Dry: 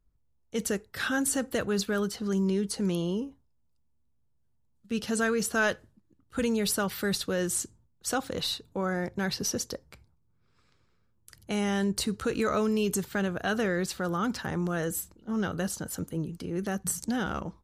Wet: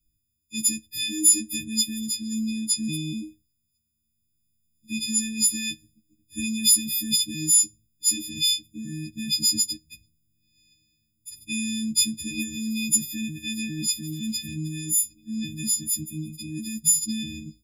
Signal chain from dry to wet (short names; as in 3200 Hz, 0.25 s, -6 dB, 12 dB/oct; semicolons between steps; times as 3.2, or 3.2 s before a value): frequency quantiser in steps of 6 st; 14.09–14.53 crackle 190/s -41 dBFS; Chebyshev band-stop 320–2200 Hz, order 5